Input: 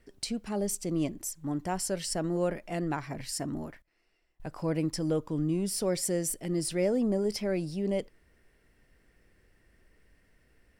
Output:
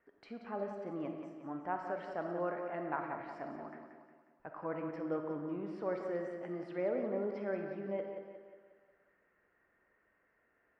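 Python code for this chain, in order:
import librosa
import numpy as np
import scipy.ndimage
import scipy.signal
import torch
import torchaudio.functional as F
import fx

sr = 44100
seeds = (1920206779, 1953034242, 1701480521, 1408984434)

p1 = scipy.signal.sosfilt(scipy.signal.butter(4, 1400.0, 'lowpass', fs=sr, output='sos'), x)
p2 = np.diff(p1, prepend=0.0)
p3 = p2 + fx.echo_feedback(p2, sr, ms=180, feedback_pct=49, wet_db=-8.5, dry=0)
p4 = fx.rev_freeverb(p3, sr, rt60_s=1.1, hf_ratio=0.75, predelay_ms=5, drr_db=5.0)
y = p4 * librosa.db_to_amplitude(15.5)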